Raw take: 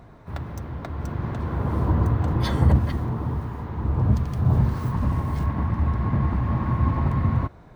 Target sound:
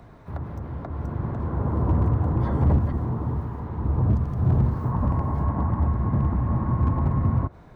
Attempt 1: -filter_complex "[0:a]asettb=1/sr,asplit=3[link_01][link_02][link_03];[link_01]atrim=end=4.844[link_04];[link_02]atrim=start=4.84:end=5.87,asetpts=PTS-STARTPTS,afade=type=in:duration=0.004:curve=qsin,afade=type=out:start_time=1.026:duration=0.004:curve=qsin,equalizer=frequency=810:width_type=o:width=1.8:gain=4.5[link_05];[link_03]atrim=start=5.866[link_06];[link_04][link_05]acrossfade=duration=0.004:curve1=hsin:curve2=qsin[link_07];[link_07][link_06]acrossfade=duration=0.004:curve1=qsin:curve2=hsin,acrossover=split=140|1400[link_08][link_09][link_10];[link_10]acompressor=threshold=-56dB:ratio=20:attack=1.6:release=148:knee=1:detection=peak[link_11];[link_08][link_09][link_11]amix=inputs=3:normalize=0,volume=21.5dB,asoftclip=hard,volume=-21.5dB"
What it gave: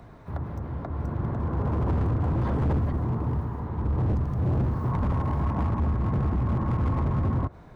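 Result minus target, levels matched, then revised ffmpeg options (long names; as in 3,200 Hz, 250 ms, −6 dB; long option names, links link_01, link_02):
gain into a clipping stage and back: distortion +9 dB
-filter_complex "[0:a]asettb=1/sr,asplit=3[link_01][link_02][link_03];[link_01]atrim=end=4.844[link_04];[link_02]atrim=start=4.84:end=5.87,asetpts=PTS-STARTPTS,afade=type=in:duration=0.004:curve=qsin,afade=type=out:start_time=1.026:duration=0.004:curve=qsin,equalizer=frequency=810:width_type=o:width=1.8:gain=4.5[link_05];[link_03]atrim=start=5.866[link_06];[link_04][link_05]acrossfade=duration=0.004:curve1=hsin:curve2=qsin[link_07];[link_07][link_06]acrossfade=duration=0.004:curve1=qsin:curve2=hsin,acrossover=split=140|1400[link_08][link_09][link_10];[link_10]acompressor=threshold=-56dB:ratio=20:attack=1.6:release=148:knee=1:detection=peak[link_11];[link_08][link_09][link_11]amix=inputs=3:normalize=0,volume=14dB,asoftclip=hard,volume=-14dB"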